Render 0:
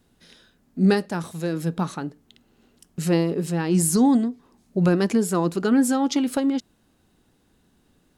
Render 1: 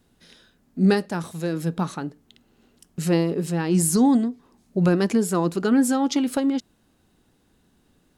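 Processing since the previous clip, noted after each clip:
no processing that can be heard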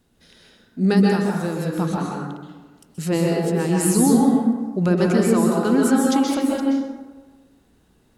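convolution reverb RT60 1.3 s, pre-delay 118 ms, DRR −2.5 dB
level −1 dB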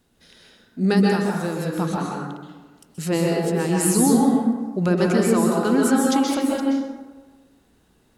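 low-shelf EQ 370 Hz −3.5 dB
level +1 dB

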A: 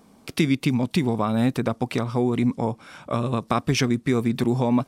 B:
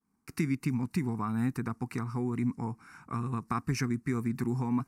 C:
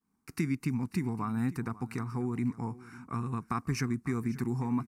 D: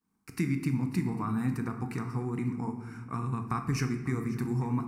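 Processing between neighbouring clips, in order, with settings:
downward expander −43 dBFS; phaser with its sweep stopped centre 1,400 Hz, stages 4; level −6.5 dB
single-tap delay 543 ms −18.5 dB; level −1 dB
convolution reverb RT60 1.1 s, pre-delay 6 ms, DRR 5.5 dB

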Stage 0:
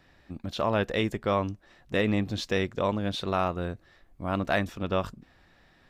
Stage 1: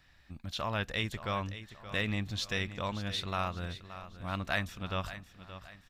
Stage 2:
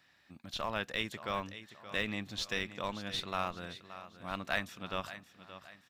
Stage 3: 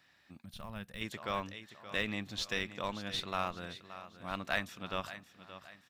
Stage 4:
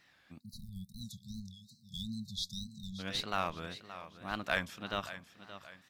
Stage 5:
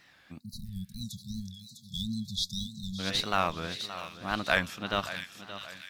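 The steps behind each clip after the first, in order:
parametric band 390 Hz −14 dB 2.5 octaves; repeating echo 574 ms, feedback 40%, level −13 dB
high-pass filter 190 Hz 12 dB per octave; in parallel at −9 dB: comparator with hysteresis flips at −28 dBFS; on the sum: level −1.5 dB
gain on a spectral selection 0:00.45–0:01.02, 230–8,200 Hz −12 dB
time-frequency box erased 0:00.39–0:02.99, 230–3,600 Hz; tape wow and flutter 150 cents; level +1 dB
delay with a high-pass on its return 652 ms, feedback 44%, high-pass 2,800 Hz, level −7 dB; level +6.5 dB

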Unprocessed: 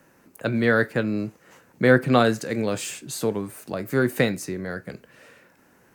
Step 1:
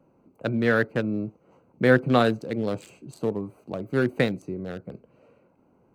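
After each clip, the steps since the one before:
adaptive Wiener filter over 25 samples
level −1.5 dB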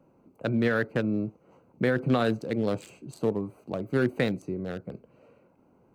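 brickwall limiter −14.5 dBFS, peak gain reduction 10 dB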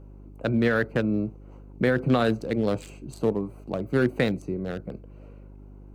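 hum with harmonics 50 Hz, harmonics 8, −48 dBFS −6 dB per octave
level +2.5 dB

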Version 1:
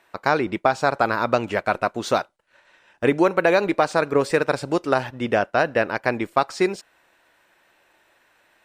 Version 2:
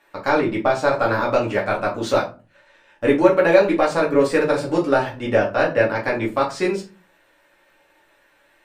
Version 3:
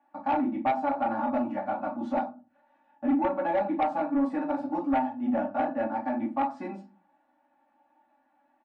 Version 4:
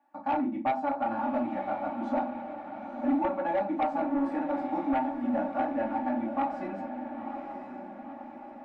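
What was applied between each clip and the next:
in parallel at −10.5 dB: soft clipping −14.5 dBFS, distortion −11 dB; on the sum: rectangular room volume 130 cubic metres, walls furnished, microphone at 2.3 metres; level −6 dB
pair of resonant band-passes 440 Hz, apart 1.6 octaves; comb filter 3.5 ms, depth 79%; in parallel at −11 dB: sine wavefolder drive 10 dB, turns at −9.5 dBFS; on the sum: level −7 dB
feedback delay with all-pass diffusion 981 ms, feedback 54%, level −8 dB; level −2 dB

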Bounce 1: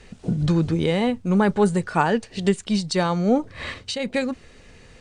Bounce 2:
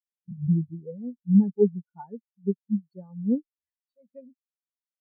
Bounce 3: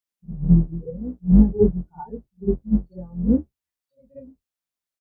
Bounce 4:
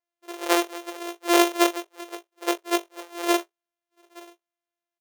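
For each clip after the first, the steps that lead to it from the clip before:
every bin expanded away from the loudest bin 4 to 1; level −4 dB
sub-octave generator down 2 octaves, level −6 dB; double-tracking delay 23 ms −6 dB; echo ahead of the sound 55 ms −16.5 dB; level +4.5 dB
samples sorted by size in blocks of 128 samples; linear-phase brick-wall high-pass 340 Hz; double-tracking delay 20 ms −12.5 dB; level −1 dB

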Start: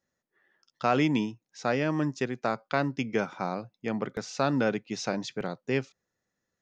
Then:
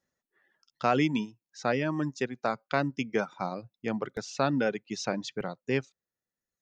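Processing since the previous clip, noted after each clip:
reverb reduction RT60 1.1 s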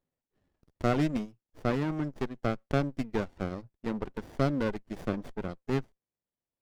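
windowed peak hold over 33 samples
level −2 dB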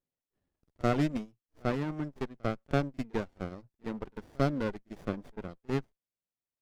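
tape wow and flutter 29 cents
echo ahead of the sound 47 ms −23 dB
expander for the loud parts 1.5 to 1, over −38 dBFS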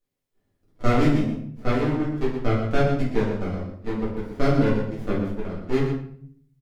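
on a send: single-tap delay 121 ms −9.5 dB
on the sum: rectangular room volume 100 cubic metres, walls mixed, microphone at 1.9 metres

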